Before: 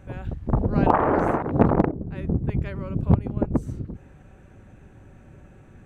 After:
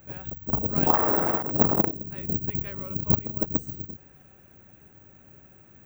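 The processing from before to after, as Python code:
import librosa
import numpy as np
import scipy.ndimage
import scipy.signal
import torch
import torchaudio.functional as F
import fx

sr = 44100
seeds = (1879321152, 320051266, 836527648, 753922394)

y = fx.highpass(x, sr, hz=99.0, slope=6)
y = fx.high_shelf(y, sr, hz=3100.0, db=9.5)
y = (np.kron(y[::2], np.eye(2)[0]) * 2)[:len(y)]
y = y * 10.0 ** (-5.5 / 20.0)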